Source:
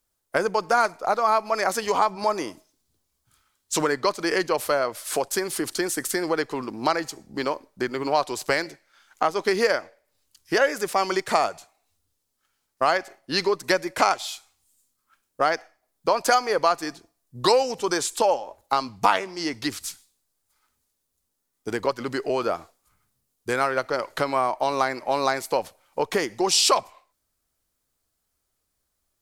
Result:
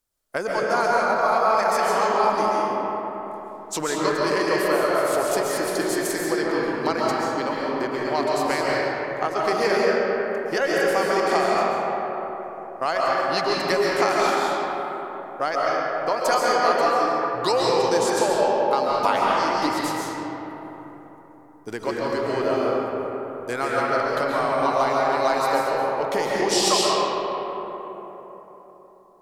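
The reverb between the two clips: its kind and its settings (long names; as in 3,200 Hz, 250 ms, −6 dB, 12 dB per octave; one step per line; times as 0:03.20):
comb and all-pass reverb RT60 4.1 s, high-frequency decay 0.4×, pre-delay 95 ms, DRR −5.5 dB
level −4 dB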